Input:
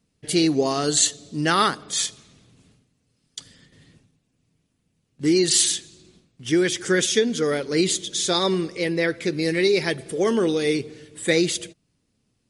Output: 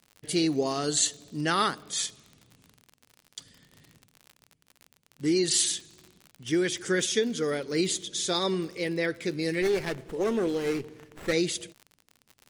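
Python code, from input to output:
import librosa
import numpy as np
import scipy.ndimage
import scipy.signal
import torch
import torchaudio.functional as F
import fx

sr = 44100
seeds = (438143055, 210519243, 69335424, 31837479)

y = fx.dmg_crackle(x, sr, seeds[0], per_s=54.0, level_db=-31.0)
y = fx.running_max(y, sr, window=9, at=(9.62, 11.33))
y = y * librosa.db_to_amplitude(-6.0)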